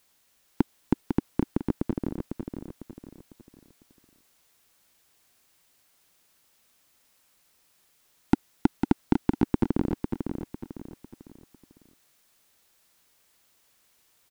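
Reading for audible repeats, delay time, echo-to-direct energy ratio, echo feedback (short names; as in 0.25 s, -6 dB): 4, 0.501 s, -5.5 dB, 37%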